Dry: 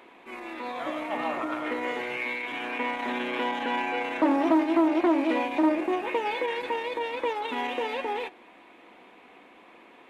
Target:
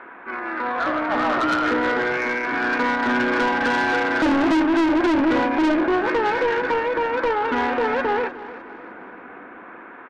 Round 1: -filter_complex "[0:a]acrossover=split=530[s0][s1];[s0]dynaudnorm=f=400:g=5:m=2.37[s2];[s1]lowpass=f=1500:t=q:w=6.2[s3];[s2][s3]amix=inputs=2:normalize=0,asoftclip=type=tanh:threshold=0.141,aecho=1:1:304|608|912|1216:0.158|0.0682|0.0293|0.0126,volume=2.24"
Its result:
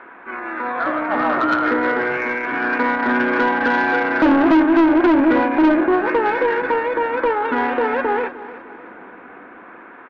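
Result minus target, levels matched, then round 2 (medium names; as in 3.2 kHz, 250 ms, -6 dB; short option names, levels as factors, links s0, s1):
saturation: distortion -5 dB
-filter_complex "[0:a]acrossover=split=530[s0][s1];[s0]dynaudnorm=f=400:g=5:m=2.37[s2];[s1]lowpass=f=1500:t=q:w=6.2[s3];[s2][s3]amix=inputs=2:normalize=0,asoftclip=type=tanh:threshold=0.0668,aecho=1:1:304|608|912|1216:0.158|0.0682|0.0293|0.0126,volume=2.24"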